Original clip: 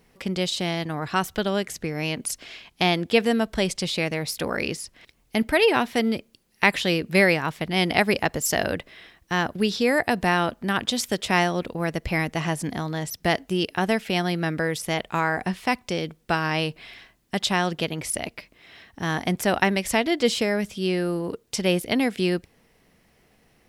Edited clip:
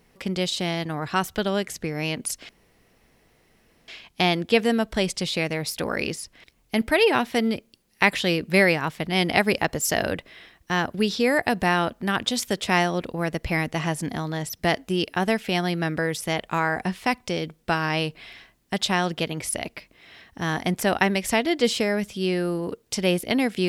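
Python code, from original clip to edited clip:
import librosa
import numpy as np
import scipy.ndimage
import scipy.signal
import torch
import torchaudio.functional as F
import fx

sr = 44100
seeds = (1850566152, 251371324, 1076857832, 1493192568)

y = fx.edit(x, sr, fx.insert_room_tone(at_s=2.49, length_s=1.39), tone=tone)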